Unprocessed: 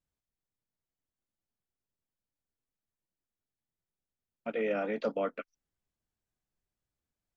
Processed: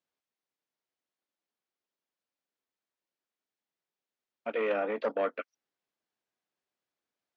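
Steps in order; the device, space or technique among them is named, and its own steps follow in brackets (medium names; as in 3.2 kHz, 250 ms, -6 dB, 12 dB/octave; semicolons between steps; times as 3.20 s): 4.76–5.20 s: treble shelf 3.9 kHz -10.5 dB; public-address speaker with an overloaded transformer (transformer saturation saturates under 680 Hz; band-pass 340–5000 Hz); trim +4 dB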